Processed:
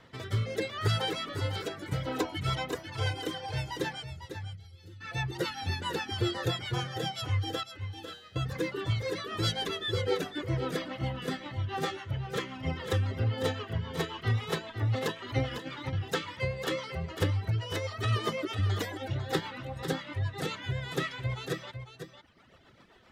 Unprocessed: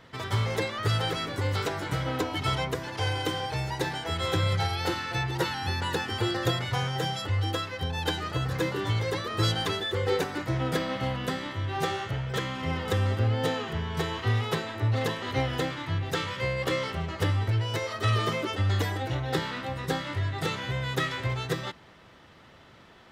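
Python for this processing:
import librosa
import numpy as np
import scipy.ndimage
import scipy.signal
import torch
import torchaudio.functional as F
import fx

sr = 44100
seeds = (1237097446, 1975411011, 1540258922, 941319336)

y = fx.dereverb_blind(x, sr, rt60_s=1.6)
y = fx.tone_stack(y, sr, knobs='10-0-1', at=(4.02, 5.0), fade=0.02)
y = fx.over_compress(y, sr, threshold_db=-35.0, ratio=-0.5, at=(15.51, 15.93))
y = fx.rotary_switch(y, sr, hz=0.75, then_hz=7.5, switch_at_s=2.07)
y = fx.comb_fb(y, sr, f0_hz=120.0, decay_s=0.8, harmonics='all', damping=0.0, mix_pct=90, at=(7.63, 8.36))
y = y + 10.0 ** (-9.5 / 20.0) * np.pad(y, (int(500 * sr / 1000.0), 0))[:len(y)]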